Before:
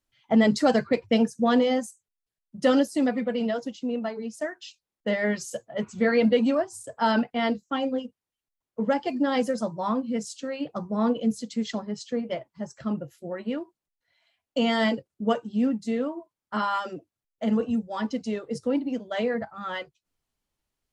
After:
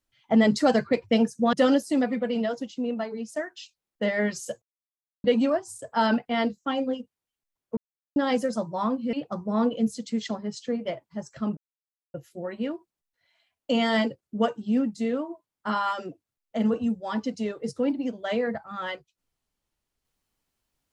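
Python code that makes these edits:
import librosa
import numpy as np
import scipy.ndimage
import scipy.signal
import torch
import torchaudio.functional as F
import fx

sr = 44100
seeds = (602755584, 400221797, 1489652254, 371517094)

y = fx.edit(x, sr, fx.cut(start_s=1.53, length_s=1.05),
    fx.silence(start_s=5.67, length_s=0.62),
    fx.silence(start_s=8.82, length_s=0.39),
    fx.cut(start_s=10.18, length_s=0.39),
    fx.insert_silence(at_s=13.01, length_s=0.57), tone=tone)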